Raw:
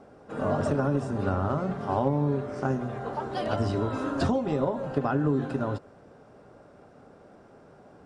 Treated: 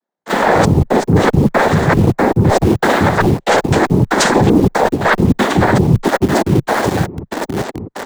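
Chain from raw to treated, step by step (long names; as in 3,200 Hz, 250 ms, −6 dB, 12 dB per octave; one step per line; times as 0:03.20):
high-shelf EQ 2,700 Hz +8 dB
repeating echo 1,074 ms, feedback 35%, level −16.5 dB
gate pattern "..xxx..x.x" 117 BPM −60 dB
Butterworth band-reject 720 Hz, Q 5.8
comb filter 6.9 ms, depth 34%
multiband delay without the direct sound highs, lows 170 ms, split 320 Hz
cochlear-implant simulation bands 6
harmonic generator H 8 −28 dB, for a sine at −13.5 dBFS
in parallel at −7 dB: bit reduction 8 bits
on the sum: frequency shifter −18 Hz
reversed playback
downward compressor 16 to 1, threshold −36 dBFS, peak gain reduction 20 dB
reversed playback
boost into a limiter +31 dB
level −1 dB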